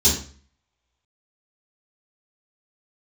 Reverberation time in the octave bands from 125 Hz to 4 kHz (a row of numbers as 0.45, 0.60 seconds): 0.50, 0.50, 0.45, 0.45, 0.40, 0.40 seconds